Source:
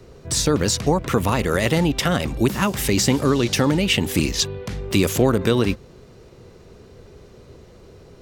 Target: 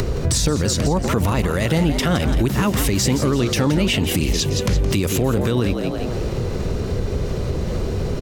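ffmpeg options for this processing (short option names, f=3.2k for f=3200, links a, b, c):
-filter_complex "[0:a]acompressor=mode=upward:threshold=-23dB:ratio=2.5,lowshelf=f=120:g=10,asplit=6[a][b][c][d][e][f];[b]adelay=169,afreqshift=82,volume=-11.5dB[g];[c]adelay=338,afreqshift=164,volume=-18.4dB[h];[d]adelay=507,afreqshift=246,volume=-25.4dB[i];[e]adelay=676,afreqshift=328,volume=-32.3dB[j];[f]adelay=845,afreqshift=410,volume=-39.2dB[k];[a][g][h][i][j][k]amix=inputs=6:normalize=0,acompressor=threshold=-26dB:ratio=2,alimiter=level_in=16.5dB:limit=-1dB:release=50:level=0:latency=1,volume=-8.5dB"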